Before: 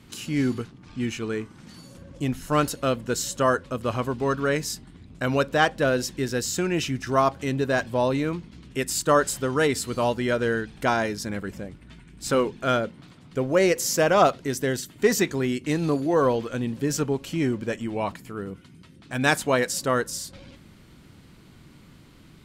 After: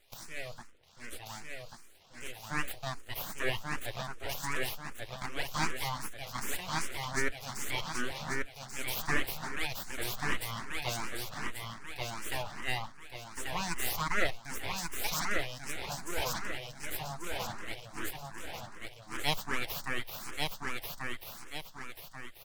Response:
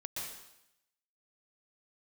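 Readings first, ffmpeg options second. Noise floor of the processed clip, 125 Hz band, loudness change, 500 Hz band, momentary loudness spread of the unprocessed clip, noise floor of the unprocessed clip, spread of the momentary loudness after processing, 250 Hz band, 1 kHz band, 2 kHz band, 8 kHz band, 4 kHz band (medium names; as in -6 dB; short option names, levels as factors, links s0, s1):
-52 dBFS, -13.0 dB, -12.0 dB, -19.0 dB, 12 LU, -51 dBFS, 11 LU, -18.5 dB, -11.5 dB, -6.5 dB, -9.5 dB, -4.5 dB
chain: -filter_complex "[0:a]highpass=f=990:p=1,aecho=1:1:1137|2274|3411|4548|5685|6822:0.708|0.304|0.131|0.0563|0.0242|0.0104,aeval=exprs='abs(val(0))':c=same,asplit=2[s0][s1];[s1]afreqshift=2.6[s2];[s0][s2]amix=inputs=2:normalize=1,volume=0.75"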